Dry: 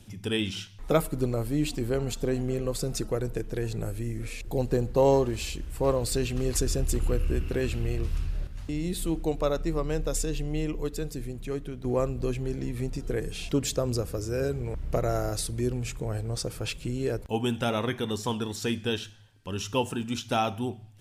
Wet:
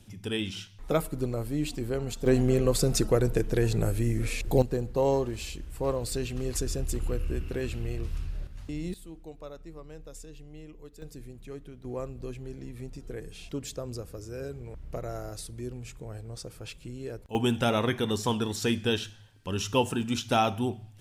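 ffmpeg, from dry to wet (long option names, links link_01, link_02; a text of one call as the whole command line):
ffmpeg -i in.wav -af "asetnsamples=nb_out_samples=441:pad=0,asendcmd='2.26 volume volume 5.5dB;4.62 volume volume -4dB;8.94 volume volume -16.5dB;11.02 volume volume -9dB;17.35 volume volume 2dB',volume=-3dB" out.wav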